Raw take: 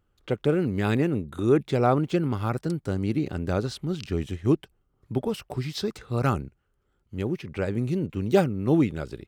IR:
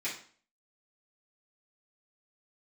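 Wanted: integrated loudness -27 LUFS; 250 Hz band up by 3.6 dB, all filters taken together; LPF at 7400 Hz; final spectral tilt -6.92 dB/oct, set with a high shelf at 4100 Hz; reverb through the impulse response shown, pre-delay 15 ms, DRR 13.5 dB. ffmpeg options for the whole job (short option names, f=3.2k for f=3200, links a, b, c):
-filter_complex "[0:a]lowpass=7.4k,equalizer=f=250:t=o:g=5,highshelf=f=4.1k:g=6,asplit=2[a][b];[1:a]atrim=start_sample=2205,adelay=15[c];[b][c]afir=irnorm=-1:irlink=0,volume=-18.5dB[d];[a][d]amix=inputs=2:normalize=0,volume=-3dB"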